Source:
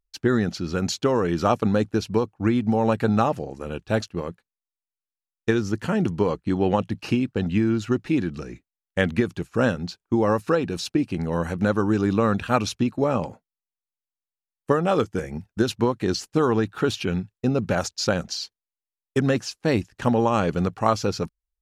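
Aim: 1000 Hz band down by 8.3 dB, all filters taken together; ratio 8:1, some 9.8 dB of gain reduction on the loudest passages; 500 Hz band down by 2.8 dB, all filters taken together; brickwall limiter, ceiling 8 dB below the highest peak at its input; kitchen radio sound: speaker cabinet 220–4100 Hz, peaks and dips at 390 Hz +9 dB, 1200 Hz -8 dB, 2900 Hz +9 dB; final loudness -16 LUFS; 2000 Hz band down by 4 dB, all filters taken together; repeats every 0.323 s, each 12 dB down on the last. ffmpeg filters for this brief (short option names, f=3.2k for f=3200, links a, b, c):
-af "equalizer=f=500:t=o:g=-8.5,equalizer=f=1k:t=o:g=-4,equalizer=f=2k:t=o:g=-4,acompressor=threshold=-29dB:ratio=8,alimiter=level_in=2.5dB:limit=-24dB:level=0:latency=1,volume=-2.5dB,highpass=220,equalizer=f=390:t=q:w=4:g=9,equalizer=f=1.2k:t=q:w=4:g=-8,equalizer=f=2.9k:t=q:w=4:g=9,lowpass=f=4.1k:w=0.5412,lowpass=f=4.1k:w=1.3066,aecho=1:1:323|646|969:0.251|0.0628|0.0157,volume=22dB"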